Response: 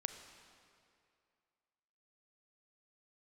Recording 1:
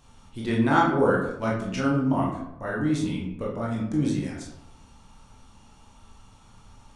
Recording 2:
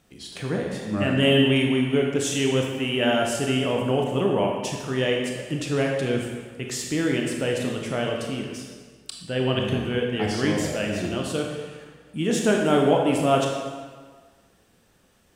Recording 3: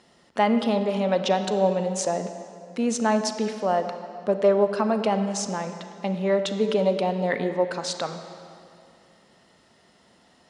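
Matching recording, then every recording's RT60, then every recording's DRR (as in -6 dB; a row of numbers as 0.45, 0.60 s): 3; 0.85, 1.6, 2.4 s; -4.5, 0.0, 7.5 dB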